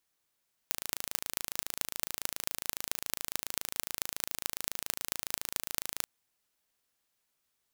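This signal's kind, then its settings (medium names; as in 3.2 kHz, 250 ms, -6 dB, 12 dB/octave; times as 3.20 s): pulse train 27.2 per s, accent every 6, -2 dBFS 5.36 s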